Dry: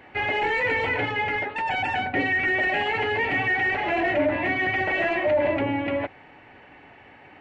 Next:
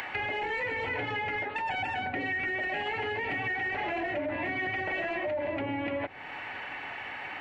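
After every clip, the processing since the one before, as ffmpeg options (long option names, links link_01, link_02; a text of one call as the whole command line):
ffmpeg -i in.wav -filter_complex "[0:a]acrossover=split=790[link_01][link_02];[link_02]acompressor=mode=upward:threshold=-27dB:ratio=2.5[link_03];[link_01][link_03]amix=inputs=2:normalize=0,alimiter=limit=-20dB:level=0:latency=1:release=169,acompressor=threshold=-29dB:ratio=6" out.wav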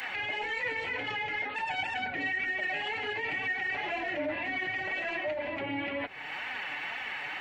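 ffmpeg -i in.wav -af "highshelf=frequency=2000:gain=11.5,alimiter=limit=-23.5dB:level=0:latency=1:release=20,flanger=delay=3.8:depth=3.1:regen=34:speed=2:shape=sinusoidal,volume=1dB" out.wav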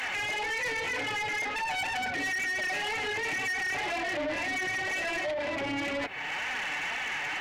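ffmpeg -i in.wav -af "asoftclip=type=tanh:threshold=-35.5dB,volume=7dB" out.wav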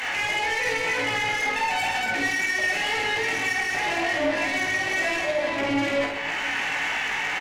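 ffmpeg -i in.wav -filter_complex "[0:a]asplit=2[link_01][link_02];[link_02]adelay=18,volume=-5dB[link_03];[link_01][link_03]amix=inputs=2:normalize=0,asplit=2[link_04][link_05];[link_05]aecho=0:1:50|130|258|462.8|790.5:0.631|0.398|0.251|0.158|0.1[link_06];[link_04][link_06]amix=inputs=2:normalize=0,volume=3dB" out.wav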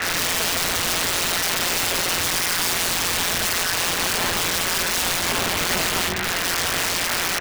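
ffmpeg -i in.wav -af "afreqshift=-280,aeval=exprs='(mod(14.1*val(0)+1,2)-1)/14.1':channel_layout=same,aeval=exprs='val(0)*sin(2*PI*87*n/s)':channel_layout=same,volume=8.5dB" out.wav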